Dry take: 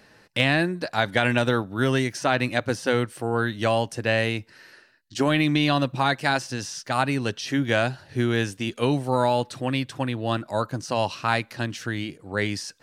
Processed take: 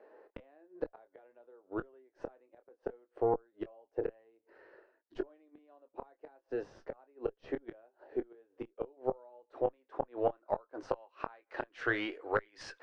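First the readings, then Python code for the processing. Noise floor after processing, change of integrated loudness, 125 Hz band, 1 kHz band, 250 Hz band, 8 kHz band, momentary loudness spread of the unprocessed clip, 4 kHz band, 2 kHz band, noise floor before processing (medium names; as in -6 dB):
-82 dBFS, -14.5 dB, -27.0 dB, -15.5 dB, -18.5 dB, under -25 dB, 7 LU, under -25 dB, -17.5 dB, -56 dBFS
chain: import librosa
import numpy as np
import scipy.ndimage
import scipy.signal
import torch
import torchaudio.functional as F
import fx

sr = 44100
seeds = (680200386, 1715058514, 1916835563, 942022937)

y = scipy.signal.sosfilt(scipy.signal.ellip(3, 1.0, 40, [400.0, 9700.0], 'bandpass', fs=sr, output='sos'), x)
y = fx.gate_flip(y, sr, shuts_db=-19.0, range_db=-35)
y = fx.tube_stage(y, sr, drive_db=20.0, bias=0.45)
y = fx.chorus_voices(y, sr, voices=2, hz=0.6, base_ms=23, depth_ms=4.9, mix_pct=25)
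y = fx.filter_sweep_lowpass(y, sr, from_hz=610.0, to_hz=2000.0, start_s=8.93, end_s=12.59, q=0.77)
y = y * librosa.db_to_amplitude(8.0)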